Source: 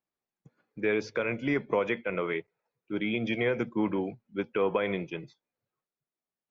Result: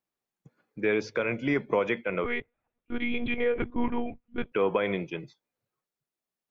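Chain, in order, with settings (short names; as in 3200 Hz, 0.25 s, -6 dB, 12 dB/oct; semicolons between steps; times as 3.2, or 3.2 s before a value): 2.24–4.52 monotone LPC vocoder at 8 kHz 240 Hz; gain +1.5 dB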